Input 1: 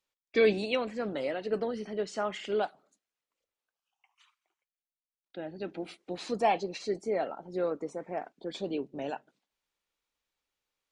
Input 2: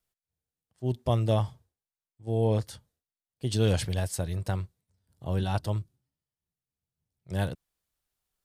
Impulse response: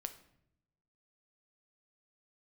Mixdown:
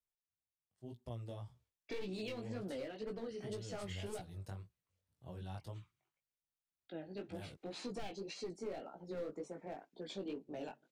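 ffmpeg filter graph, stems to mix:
-filter_complex "[0:a]aeval=exprs='clip(val(0),-1,0.0398)':c=same,adelay=1550,volume=-3dB[a];[1:a]acompressor=threshold=-28dB:ratio=6,volume=-12dB[b];[a][b]amix=inputs=2:normalize=0,acrossover=split=410|3000[c][d][e];[d]acompressor=threshold=-44dB:ratio=6[f];[c][f][e]amix=inputs=3:normalize=0,flanger=delay=16:depth=5.4:speed=1.9,alimiter=level_in=9.5dB:limit=-24dB:level=0:latency=1:release=191,volume=-9.5dB"

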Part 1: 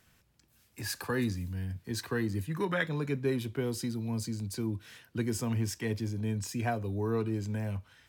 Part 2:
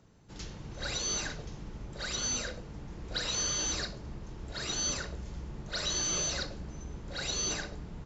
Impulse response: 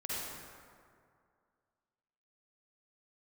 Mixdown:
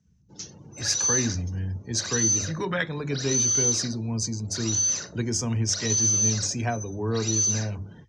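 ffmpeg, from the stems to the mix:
-filter_complex "[0:a]equalizer=f=74:w=1.2:g=6,bandreject=f=50:t=h:w=6,bandreject=f=100:t=h:w=6,bandreject=f=150:t=h:w=6,bandreject=f=200:t=h:w=6,bandreject=f=250:t=h:w=6,bandreject=f=300:t=h:w=6,bandreject=f=350:t=h:w=6,bandreject=f=400:t=h:w=6,volume=3dB[a];[1:a]highpass=f=98:w=0.5412,highpass=f=98:w=1.3066,alimiter=level_in=5.5dB:limit=-24dB:level=0:latency=1:release=16,volume=-5.5dB,acontrast=46,volume=-6.5dB[b];[a][b]amix=inputs=2:normalize=0,afftdn=nr=25:nf=-51,lowpass=f=6.1k:t=q:w=7.3"

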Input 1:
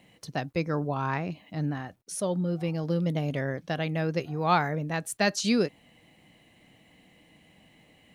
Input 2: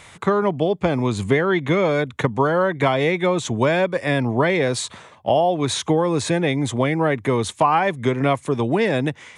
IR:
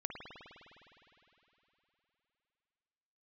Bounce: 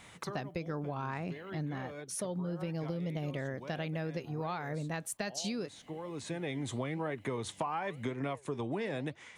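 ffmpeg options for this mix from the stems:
-filter_complex "[0:a]acompressor=threshold=-27dB:ratio=6,volume=-3dB,asplit=2[a][b];[1:a]flanger=delay=2.3:depth=9.8:regen=83:speed=0.98:shape=triangular,volume=-6dB[c];[b]apad=whole_len=413439[d];[c][d]sidechaincompress=threshold=-50dB:ratio=8:attack=5:release=744[e];[a][e]amix=inputs=2:normalize=0,acompressor=threshold=-33dB:ratio=4"

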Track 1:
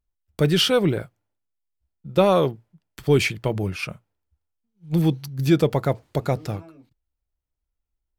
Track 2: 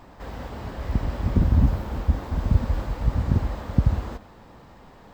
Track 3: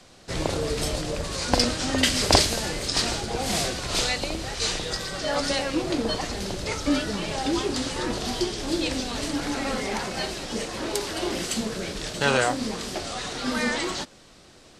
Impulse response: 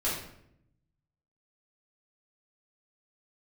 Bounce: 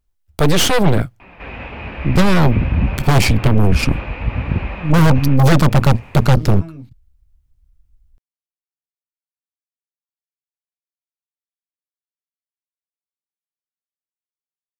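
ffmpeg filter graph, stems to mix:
-filter_complex "[0:a]asubboost=boost=10:cutoff=160,aeval=exprs='0.473*(abs(mod(val(0)/0.473+3,4)-2)-1)':c=same,aeval=exprs='0.473*(cos(1*acos(clip(val(0)/0.473,-1,1)))-cos(1*PI/2))+0.168*(cos(6*acos(clip(val(0)/0.473,-1,1)))-cos(6*PI/2))':c=same,volume=1.5dB[a];[1:a]flanger=delay=5.1:depth=9.8:regen=70:speed=0.57:shape=sinusoidal,lowpass=f=2.5k:t=q:w=11,adelay=1200,volume=0.5dB[b];[a][b]amix=inputs=2:normalize=0,alimiter=limit=-9dB:level=0:latency=1:release=25,volume=0dB,acontrast=84"

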